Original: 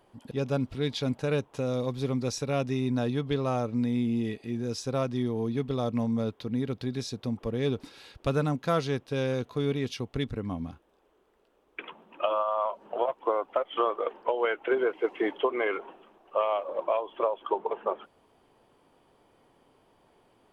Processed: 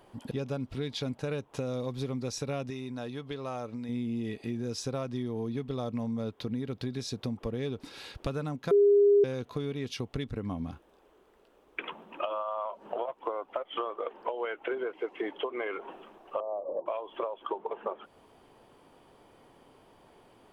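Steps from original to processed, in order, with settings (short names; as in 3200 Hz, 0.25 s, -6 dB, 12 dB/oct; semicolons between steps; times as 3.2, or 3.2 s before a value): 16.4–16.86 inverse Chebyshev low-pass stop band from 4200 Hz, stop band 80 dB; compressor 6:1, threshold -36 dBFS, peak gain reduction 14.5 dB; 2.7–3.89 low shelf 340 Hz -8 dB; 8.71–9.24 bleep 406 Hz -22.5 dBFS; gain +5 dB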